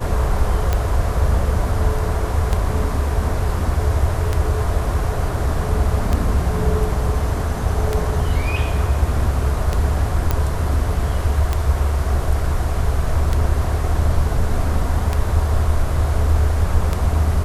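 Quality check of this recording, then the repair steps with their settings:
scratch tick 33 1/3 rpm −6 dBFS
0:10.31: click −5 dBFS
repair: click removal

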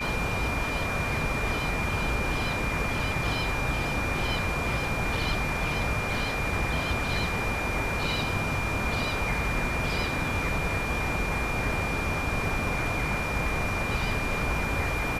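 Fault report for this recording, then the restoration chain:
whistle 2,400 Hz −32 dBFS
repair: notch filter 2,400 Hz, Q 30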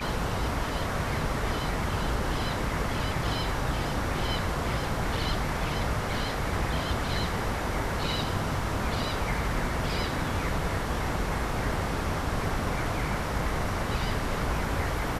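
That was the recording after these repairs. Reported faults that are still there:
none of them is left

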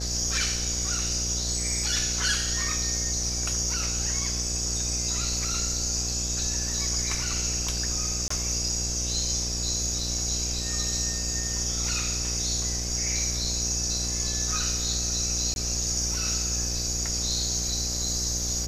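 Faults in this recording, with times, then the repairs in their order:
mains buzz 60 Hz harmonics 13 −33 dBFS
0:08.28–0:08.30: drop-out 24 ms
0:15.54–0:15.56: drop-out 21 ms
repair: hum removal 60 Hz, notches 13
repair the gap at 0:08.28, 24 ms
repair the gap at 0:15.54, 21 ms

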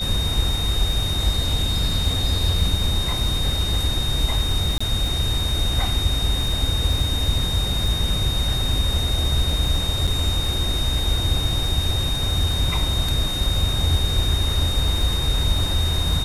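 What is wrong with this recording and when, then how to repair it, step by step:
surface crackle 23 per second −27 dBFS
whistle 3,700 Hz −25 dBFS
0:04.78–0:04.80: drop-out 25 ms
0:10.07–0:10.08: drop-out 5.8 ms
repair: click removal
notch filter 3,700 Hz, Q 30
repair the gap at 0:04.78, 25 ms
repair the gap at 0:10.07, 5.8 ms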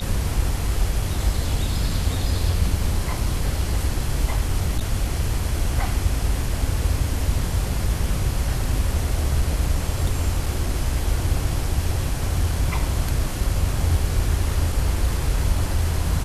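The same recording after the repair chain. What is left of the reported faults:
none of them is left

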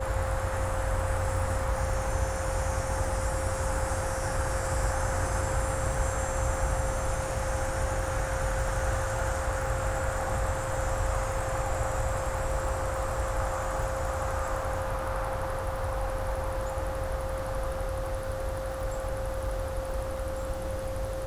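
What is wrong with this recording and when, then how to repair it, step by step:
surface crackle 39 per second −37 dBFS
whistle 530 Hz −34 dBFS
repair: click removal
notch filter 530 Hz, Q 30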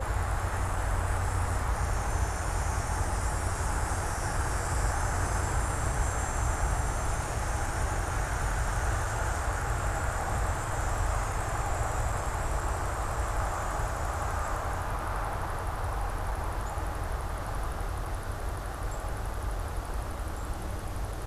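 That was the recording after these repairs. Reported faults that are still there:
none of them is left

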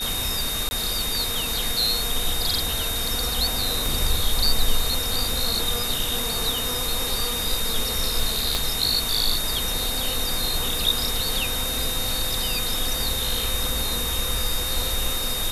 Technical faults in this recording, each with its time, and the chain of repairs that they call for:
whistle 3,700 Hz −28 dBFS
0:00.69–0:00.71: drop-out 20 ms
0:03.86: click
0:08.55: click −9 dBFS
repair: click removal
notch filter 3,700 Hz, Q 30
repair the gap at 0:00.69, 20 ms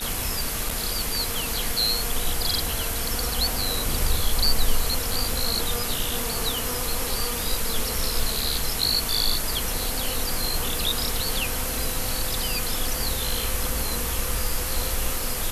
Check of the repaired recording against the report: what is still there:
0:03.86: click
0:08.55: click

